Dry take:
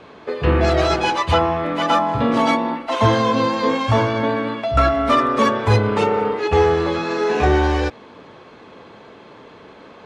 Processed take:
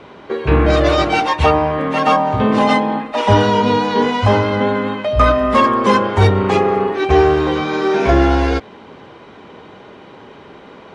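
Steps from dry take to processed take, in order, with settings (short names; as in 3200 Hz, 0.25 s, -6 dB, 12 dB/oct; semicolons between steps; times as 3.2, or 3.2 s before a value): speed mistake 48 kHz file played as 44.1 kHz; gain +3.5 dB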